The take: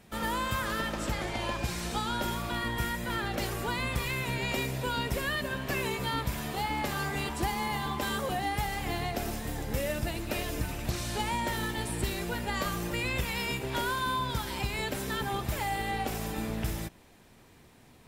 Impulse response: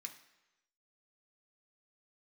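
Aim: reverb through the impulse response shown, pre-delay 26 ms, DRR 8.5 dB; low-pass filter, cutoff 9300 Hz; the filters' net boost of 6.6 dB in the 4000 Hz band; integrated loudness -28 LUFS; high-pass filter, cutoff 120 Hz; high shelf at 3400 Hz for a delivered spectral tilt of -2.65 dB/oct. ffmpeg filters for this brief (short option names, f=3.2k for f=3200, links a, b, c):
-filter_complex "[0:a]highpass=120,lowpass=9.3k,highshelf=f=3.4k:g=6,equalizer=f=4k:t=o:g=4.5,asplit=2[a][b];[1:a]atrim=start_sample=2205,adelay=26[c];[b][c]afir=irnorm=-1:irlink=0,volume=-4dB[d];[a][d]amix=inputs=2:normalize=0,volume=1.5dB"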